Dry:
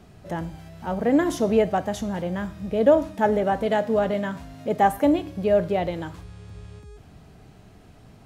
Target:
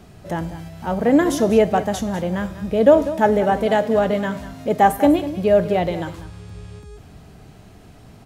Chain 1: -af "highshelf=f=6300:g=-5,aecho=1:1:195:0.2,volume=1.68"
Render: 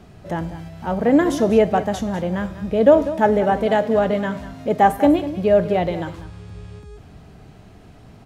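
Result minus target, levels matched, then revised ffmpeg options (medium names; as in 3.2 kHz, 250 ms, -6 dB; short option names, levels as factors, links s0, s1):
8 kHz band -5.0 dB
-af "highshelf=f=6300:g=3.5,aecho=1:1:195:0.2,volume=1.68"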